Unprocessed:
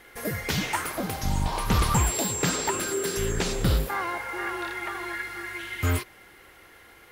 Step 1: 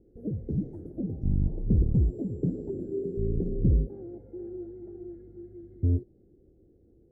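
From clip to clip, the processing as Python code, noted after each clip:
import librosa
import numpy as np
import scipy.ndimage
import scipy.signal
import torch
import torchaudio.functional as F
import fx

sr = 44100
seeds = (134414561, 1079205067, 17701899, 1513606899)

y = scipy.signal.sosfilt(scipy.signal.cheby2(4, 50, 1000.0, 'lowpass', fs=sr, output='sos'), x)
y = y * 10.0 ** (1.0 / 20.0)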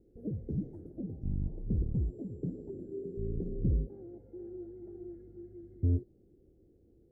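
y = fx.rider(x, sr, range_db=5, speed_s=2.0)
y = y * 10.0 ** (-8.5 / 20.0)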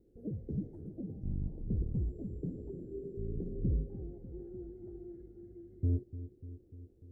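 y = fx.echo_bbd(x, sr, ms=296, stages=1024, feedback_pct=65, wet_db=-13.0)
y = y * 10.0 ** (-2.5 / 20.0)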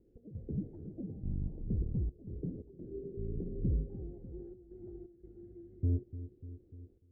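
y = fx.step_gate(x, sr, bpm=86, pattern='x.xxxxxxxxxx.x', floor_db=-12.0, edge_ms=4.5)
y = fx.air_absorb(y, sr, metres=260.0)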